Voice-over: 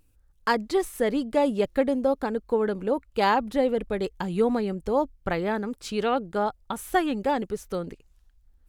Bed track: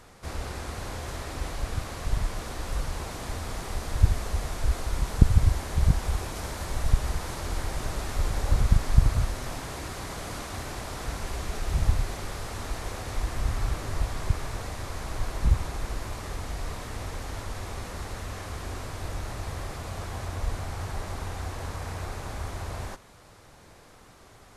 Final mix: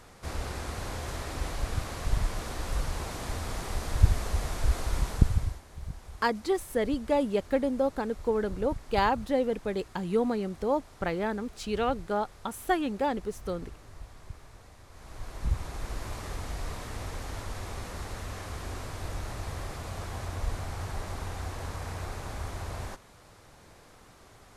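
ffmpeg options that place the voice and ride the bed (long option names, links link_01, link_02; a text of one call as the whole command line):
ffmpeg -i stem1.wav -i stem2.wav -filter_complex "[0:a]adelay=5750,volume=-3.5dB[link_01];[1:a]volume=15dB,afade=type=out:start_time=4.98:duration=0.63:silence=0.141254,afade=type=in:start_time=14.89:duration=1.24:silence=0.16788[link_02];[link_01][link_02]amix=inputs=2:normalize=0" out.wav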